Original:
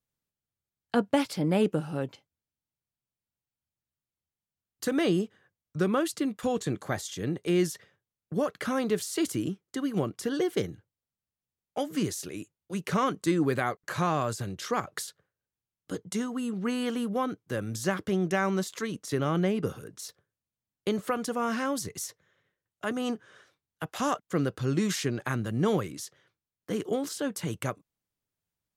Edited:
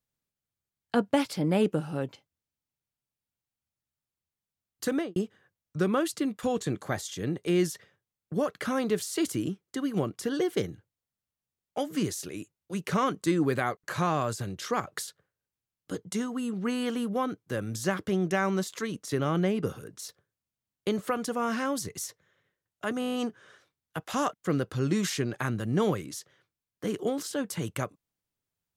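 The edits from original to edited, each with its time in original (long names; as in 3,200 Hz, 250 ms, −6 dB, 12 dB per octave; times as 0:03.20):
0:04.91–0:05.16: fade out and dull
0:23.00: stutter 0.02 s, 8 plays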